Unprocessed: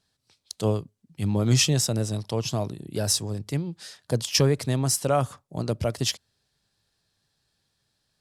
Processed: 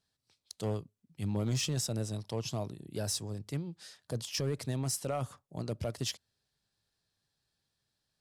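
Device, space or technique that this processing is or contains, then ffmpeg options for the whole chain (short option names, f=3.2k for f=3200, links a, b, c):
limiter into clipper: -af "alimiter=limit=-15dB:level=0:latency=1:release=14,asoftclip=type=hard:threshold=-17.5dB,volume=-8.5dB"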